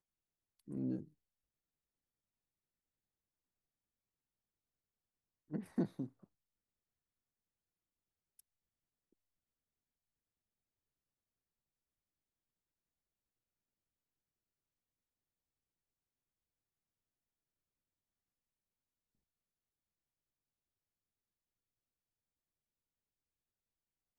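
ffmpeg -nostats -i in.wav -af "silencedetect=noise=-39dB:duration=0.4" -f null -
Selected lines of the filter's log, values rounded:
silence_start: 0.00
silence_end: 0.71 | silence_duration: 0.71
silence_start: 1.01
silence_end: 5.53 | silence_duration: 4.53
silence_start: 6.05
silence_end: 24.19 | silence_duration: 18.14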